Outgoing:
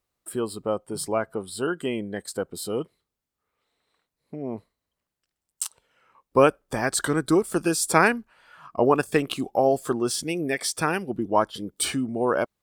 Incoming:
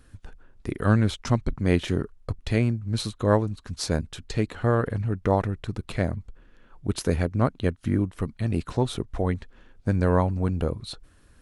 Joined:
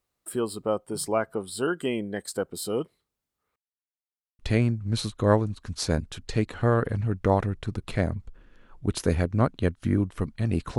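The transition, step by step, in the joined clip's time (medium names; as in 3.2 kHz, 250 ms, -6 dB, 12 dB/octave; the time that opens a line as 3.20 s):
outgoing
3.56–4.39 s: mute
4.39 s: go over to incoming from 2.40 s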